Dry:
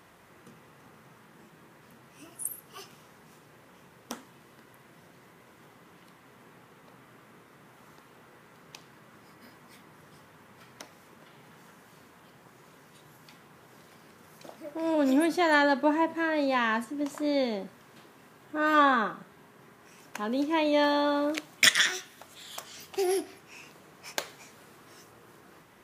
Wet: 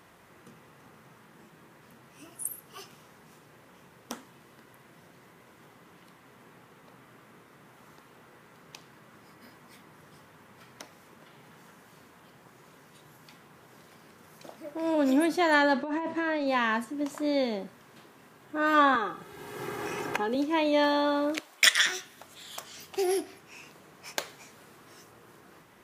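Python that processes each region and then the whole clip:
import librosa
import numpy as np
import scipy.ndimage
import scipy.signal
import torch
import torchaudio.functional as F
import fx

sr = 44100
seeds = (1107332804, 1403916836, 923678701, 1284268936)

y = fx.chain(x, sr, fx.lowpass(hz=7000.0, slope=12),
    fx.over_compress(threshold_db=-30.0, ratio=-1.0), at=(15.74, 16.47))
y = fx.chain(y, sr, fx.low_shelf(hz=390.0, db=4.0),
    fx.comb(ms=2.4, depth=0.65),
    fx.band_squash(depth_pct=100), at=(18.95, 20.35))
y = fx.chain(y, sr, fx.highpass(hz=480.0, slope=12),
    fx.notch(hz=6500.0, q=26.0), at=(21.39, 21.86))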